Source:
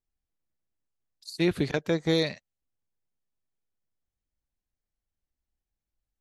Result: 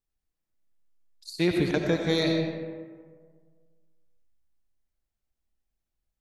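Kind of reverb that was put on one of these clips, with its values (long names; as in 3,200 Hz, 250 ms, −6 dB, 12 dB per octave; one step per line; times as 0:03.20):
comb and all-pass reverb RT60 1.7 s, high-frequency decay 0.45×, pre-delay 50 ms, DRR 2 dB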